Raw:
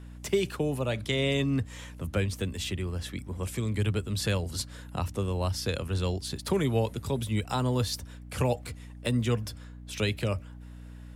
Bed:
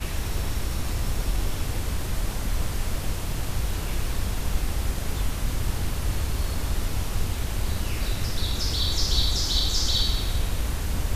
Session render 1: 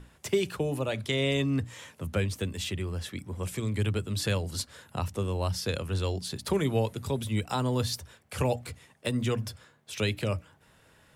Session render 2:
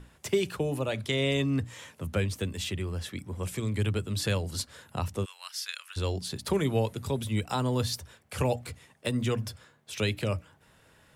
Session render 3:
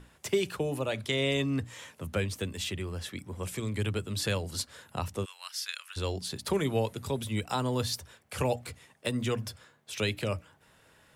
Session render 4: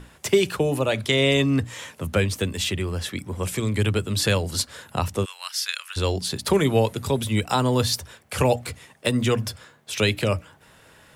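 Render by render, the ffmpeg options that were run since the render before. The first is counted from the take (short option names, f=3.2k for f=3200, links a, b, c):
-af "bandreject=f=60:t=h:w=6,bandreject=f=120:t=h:w=6,bandreject=f=180:t=h:w=6,bandreject=f=240:t=h:w=6,bandreject=f=300:t=h:w=6"
-filter_complex "[0:a]asplit=3[a][b][c];[a]afade=t=out:st=5.24:d=0.02[d];[b]highpass=f=1.4k:w=0.5412,highpass=f=1.4k:w=1.3066,afade=t=in:st=5.24:d=0.02,afade=t=out:st=5.96:d=0.02[e];[c]afade=t=in:st=5.96:d=0.02[f];[d][e][f]amix=inputs=3:normalize=0"
-af "lowshelf=f=230:g=-4.5"
-af "volume=9dB"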